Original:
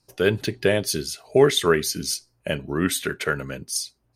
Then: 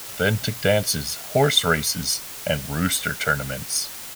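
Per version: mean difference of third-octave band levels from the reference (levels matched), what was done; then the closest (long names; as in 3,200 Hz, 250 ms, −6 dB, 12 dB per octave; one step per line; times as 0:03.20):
9.5 dB: comb filter 1.4 ms, depth 93%
bit-depth reduction 6 bits, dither triangular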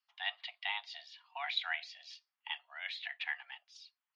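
15.5 dB: first difference
single-sideband voice off tune +300 Hz 500–3,200 Hz
level +1.5 dB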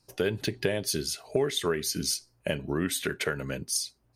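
3.5 dB: downward compressor 4 to 1, threshold −25 dBFS, peak gain reduction 12.5 dB
dynamic equaliser 1,300 Hz, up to −4 dB, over −47 dBFS, Q 3.9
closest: third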